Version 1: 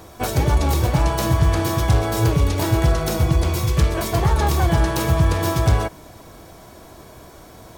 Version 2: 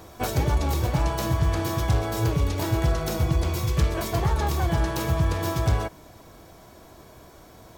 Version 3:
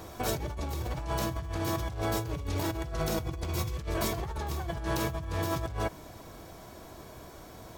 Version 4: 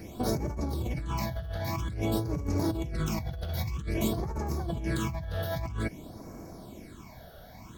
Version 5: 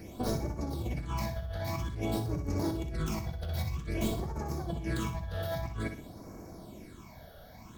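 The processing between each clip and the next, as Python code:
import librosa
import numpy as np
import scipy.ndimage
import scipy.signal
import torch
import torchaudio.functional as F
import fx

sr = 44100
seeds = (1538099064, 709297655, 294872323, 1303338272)

y1 = fx.rider(x, sr, range_db=3, speed_s=0.5)
y1 = fx.peak_eq(y1, sr, hz=9300.0, db=-4.5, octaves=0.22)
y1 = F.gain(torch.from_numpy(y1), -5.5).numpy()
y2 = fx.over_compress(y1, sr, threshold_db=-29.0, ratio=-1.0)
y2 = F.gain(torch.from_numpy(y2), -4.0).numpy()
y3 = fx.phaser_stages(y2, sr, stages=8, low_hz=300.0, high_hz=3400.0, hz=0.51, feedback_pct=25)
y3 = fx.small_body(y3, sr, hz=(220.0, 2200.0), ring_ms=20, db=8)
y4 = fx.tracing_dist(y3, sr, depth_ms=0.052)
y4 = fx.room_flutter(y4, sr, wall_m=10.6, rt60_s=0.43)
y4 = F.gain(torch.from_numpy(y4), -3.0).numpy()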